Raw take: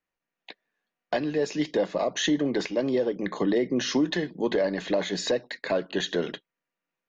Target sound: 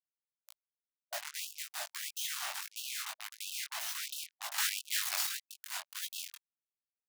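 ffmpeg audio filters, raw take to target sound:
ffmpeg -i in.wav -filter_complex "[0:a]aemphasis=mode=production:type=50fm,bandreject=frequency=60:width_type=h:width=6,bandreject=frequency=120:width_type=h:width=6,bandreject=frequency=180:width_type=h:width=6,bandreject=frequency=240:width_type=h:width=6,bandreject=frequency=300:width_type=h:width=6,bandreject=frequency=360:width_type=h:width=6,acrossover=split=160[link_01][link_02];[link_01]acontrast=56[link_03];[link_03][link_02]amix=inputs=2:normalize=0,lowshelf=frequency=140:gain=-4,asplit=2[link_04][link_05];[link_05]aecho=0:1:93|186|279|372|465:0.112|0.0662|0.0391|0.023|0.0136[link_06];[link_04][link_06]amix=inputs=2:normalize=0,acrusher=bits=3:mix=0:aa=0.5,aeval=exprs='(mod(20*val(0)+1,2)-1)/20':channel_layout=same,flanger=delay=18:depth=4.7:speed=1.8,asettb=1/sr,asplit=3[link_07][link_08][link_09];[link_07]atrim=end=4.584[link_10];[link_08]atrim=start=4.58:end=5.27,asetpts=PTS-STARTPTS,afade=type=in:duration=0.004:curve=qsin,afade=type=out:start_time=0.686:duration=0.004:curve=qsin,acontrast=86[link_11];[link_09]atrim=start=5.266[link_12];[link_10][link_11]acrossfade=duration=0.004:curve1=hsin:curve2=qsin[link_13];[link_13][link_12]acrossfade=duration=0.004:curve1=qsin:curve2=hsin,afftfilt=real='re*gte(b*sr/1024,590*pow(2600/590,0.5+0.5*sin(2*PI*1.5*pts/sr)))':imag='im*gte(b*sr/1024,590*pow(2600/590,0.5+0.5*sin(2*PI*1.5*pts/sr)))':win_size=1024:overlap=0.75" out.wav

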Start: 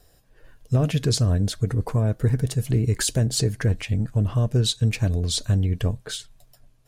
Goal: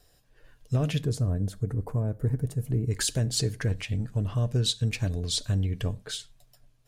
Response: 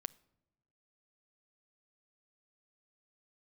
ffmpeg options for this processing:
-filter_complex "[0:a]asetnsamples=nb_out_samples=441:pad=0,asendcmd='1.01 equalizer g -12.5;2.91 equalizer g 3.5',equalizer=frequency=3800:width=0.49:gain=4.5[link_01];[1:a]atrim=start_sample=2205,afade=type=out:start_time=0.17:duration=0.01,atrim=end_sample=7938[link_02];[link_01][link_02]afir=irnorm=-1:irlink=0,volume=-3dB"

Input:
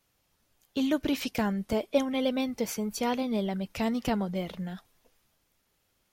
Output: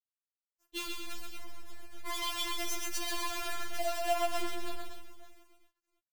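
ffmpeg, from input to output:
ffmpeg -i in.wav -filter_complex "[0:a]asplit=3[link_01][link_02][link_03];[link_01]afade=type=out:start_time=0.86:duration=0.02[link_04];[link_02]aeval=exprs='(tanh(89.1*val(0)+0.4)-tanh(0.4))/89.1':channel_layout=same,afade=type=in:start_time=0.86:duration=0.02,afade=type=out:start_time=2.06:duration=0.02[link_05];[link_03]afade=type=in:start_time=2.06:duration=0.02[link_06];[link_04][link_05][link_06]amix=inputs=3:normalize=0,asettb=1/sr,asplit=3[link_07][link_08][link_09];[link_07]atrim=end=3.474[link_10];[link_08]atrim=start=3.47:end=4.66,asetpts=PTS-STARTPTS,afade=type=in:duration=0.004:curve=qsin,afade=type=out:start_time=1.186:duration=0.004:curve=qsin,lowshelf=frequency=180:gain=-10.5[link_11];[link_09]atrim=start=4.656[link_12];[link_10][link_11]acrossfade=duration=0.004:curve1=hsin:curve2=qsin[link_13];[link_13][link_12]acrossfade=duration=0.004:curve1=qsin:curve2=hsin,asplit=2[link_14][link_15];[link_15]adelay=332,lowpass=frequency=4000:poles=1,volume=-15dB,asplit=2[link_16][link_17];[link_17]adelay=332,lowpass=frequency=4000:poles=1,volume=0.42,asplit=2[link_18][link_19];[link_19]adelay=332,lowpass=frequency=4000:poles=1,volume=0.42,asplit=2[link_20][link_21];[link_21]adelay=332,lowpass=frequency=4000:poles=1,volume=0.42[link_22];[link_16][link_18][link_20][link_22]amix=inputs=4:normalize=0[link_23];[link_14][link_23]amix=inputs=2:normalize=0,acrusher=bits=6:dc=4:mix=0:aa=0.000001,asplit=2[link_24][link_25];[link_25]aecho=0:1:52|130|242|562:0.224|0.631|0.355|0.126[link_26];[link_24][link_26]amix=inputs=2:normalize=0,afftfilt=real='re*4*eq(mod(b,16),0)':imag='im*4*eq(mod(b,16),0)':win_size=2048:overlap=0.75" out.wav

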